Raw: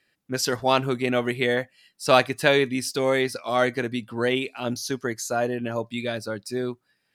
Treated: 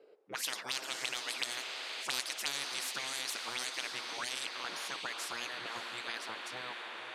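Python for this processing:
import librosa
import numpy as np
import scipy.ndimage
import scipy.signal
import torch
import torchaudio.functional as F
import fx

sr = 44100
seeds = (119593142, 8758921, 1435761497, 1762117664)

y = fx.spec_gate(x, sr, threshold_db=-10, keep='weak')
y = scipy.signal.sosfilt(scipy.signal.butter(2, 280.0, 'highpass', fs=sr, output='sos'), y)
y = fx.auto_wah(y, sr, base_hz=430.0, top_hz=4500.0, q=7.3, full_db=-26.5, direction='up')
y = fx.echo_diffused(y, sr, ms=587, feedback_pct=52, wet_db=-15)
y = fx.spectral_comp(y, sr, ratio=4.0)
y = y * librosa.db_to_amplitude(4.0)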